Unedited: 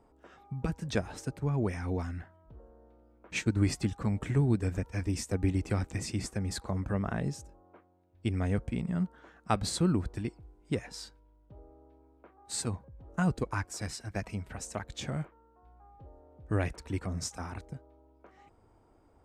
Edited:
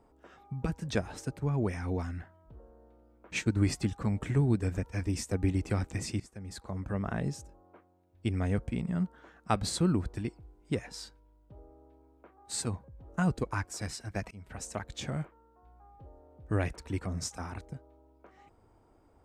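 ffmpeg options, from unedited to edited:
ffmpeg -i in.wav -filter_complex "[0:a]asplit=3[link_01][link_02][link_03];[link_01]atrim=end=6.2,asetpts=PTS-STARTPTS,afade=type=out:start_time=6.196:duration=0.004:curve=hsin:silence=0.125893[link_04];[link_02]atrim=start=6.2:end=14.31,asetpts=PTS-STARTPTS,afade=type=in:duration=0.99:silence=0.125893,afade=type=out:start_time=8.106:duration=0.004:curve=hsin:silence=0.0668344[link_05];[link_03]atrim=start=14.31,asetpts=PTS-STARTPTS,afade=type=in:duration=0.29:silence=0.0668344[link_06];[link_04][link_05][link_06]concat=n=3:v=0:a=1" out.wav

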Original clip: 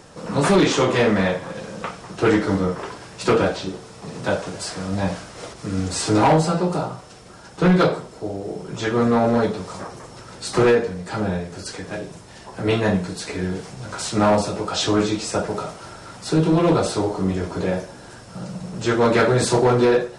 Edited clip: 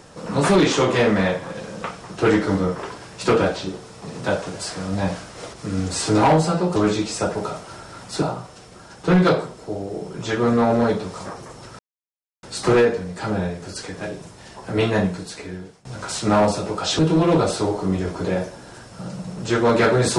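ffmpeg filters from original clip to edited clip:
ffmpeg -i in.wav -filter_complex "[0:a]asplit=6[link_01][link_02][link_03][link_04][link_05][link_06];[link_01]atrim=end=6.762[link_07];[link_02]atrim=start=14.888:end=16.352[link_08];[link_03]atrim=start=6.758:end=10.33,asetpts=PTS-STARTPTS,afade=type=out:start_time=3.568:duration=0.004:curve=hsin,apad=pad_dur=0.64[link_09];[link_04]atrim=start=10.33:end=13.75,asetpts=PTS-STARTPTS,afade=type=in:duration=0.004:curve=hsin,afade=type=out:start_time=2.54:duration=0.88:silence=0.0668344[link_10];[link_05]atrim=start=13.75:end=14.892,asetpts=PTS-STARTPTS,afade=type=in:duration=0.004:curve=hsin:silence=0.0668344[link_11];[link_06]atrim=start=16.348[link_12];[link_07][link_08]acrossfade=duration=0.004:curve1=hsin:curve2=hsin[link_13];[link_09][link_10][link_11]concat=n=3:v=0:a=1[link_14];[link_13][link_14]acrossfade=duration=0.004:curve1=hsin:curve2=hsin[link_15];[link_15][link_12]acrossfade=duration=0.004:curve1=hsin:curve2=hsin" out.wav

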